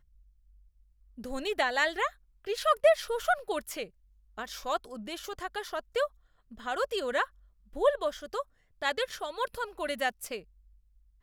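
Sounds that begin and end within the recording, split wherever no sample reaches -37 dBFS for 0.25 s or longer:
1.19–2.08
2.47–3.84
4.38–6.06
6.6–7.24
7.76–8.42
8.82–10.38

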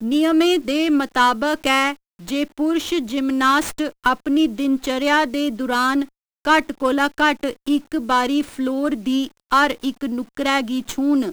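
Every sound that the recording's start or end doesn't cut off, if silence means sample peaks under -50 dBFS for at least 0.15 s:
2.19–6.09

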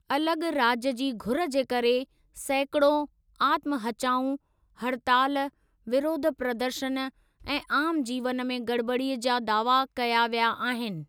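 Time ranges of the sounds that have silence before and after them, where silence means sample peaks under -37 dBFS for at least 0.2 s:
2.37–3.05
3.4–4.36
4.81–5.48
5.87–7.09

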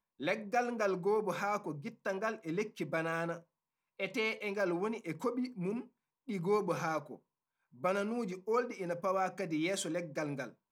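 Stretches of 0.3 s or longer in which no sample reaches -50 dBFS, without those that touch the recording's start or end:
3.4–3.99
5.87–6.28
7.16–7.76

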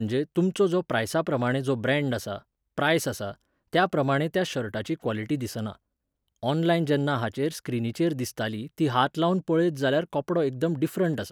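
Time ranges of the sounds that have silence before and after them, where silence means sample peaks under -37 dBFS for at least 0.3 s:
2.78–3.34
3.73–5.72

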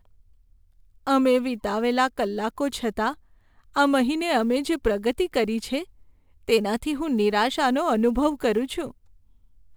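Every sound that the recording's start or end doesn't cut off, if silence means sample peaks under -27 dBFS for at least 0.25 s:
1.07–3.12
3.76–5.82
6.49–8.87

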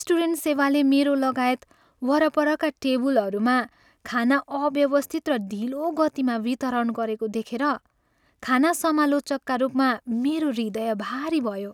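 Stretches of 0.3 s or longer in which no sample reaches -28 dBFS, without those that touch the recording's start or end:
1.55–2.03
3.64–4.06
7.77–8.43

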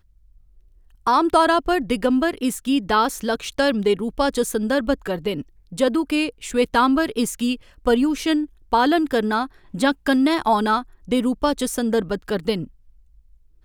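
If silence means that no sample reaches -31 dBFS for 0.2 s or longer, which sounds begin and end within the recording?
1.07–5.42
5.72–7.56
7.86–8.45
8.72–9.46
9.74–10.82
11.08–12.65

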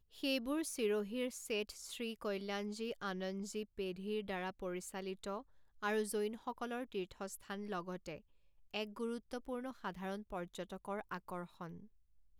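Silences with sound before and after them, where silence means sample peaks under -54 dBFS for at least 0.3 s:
5.42–5.82
8.2–8.74

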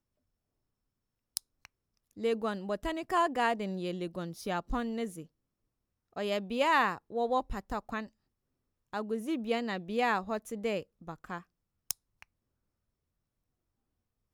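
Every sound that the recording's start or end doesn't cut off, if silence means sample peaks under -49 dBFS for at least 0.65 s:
1.37–5.25
6.16–8.07
8.93–12.23

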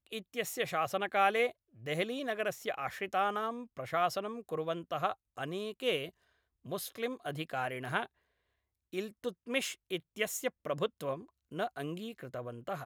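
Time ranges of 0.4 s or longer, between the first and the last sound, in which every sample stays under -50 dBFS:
6.09–6.65
8.06–8.93

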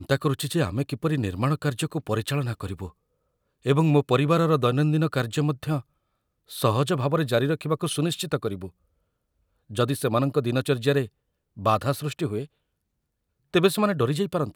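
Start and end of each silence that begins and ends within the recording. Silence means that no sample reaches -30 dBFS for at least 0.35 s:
2.87–3.66
5.8–6.52
8.67–9.73
11.05–11.59
12.44–13.54

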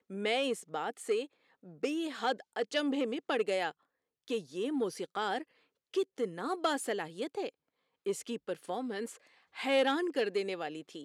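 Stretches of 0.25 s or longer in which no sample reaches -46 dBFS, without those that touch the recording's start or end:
1.26–1.66
3.71–4.28
5.43–5.94
7.49–8.06
9.16–9.56

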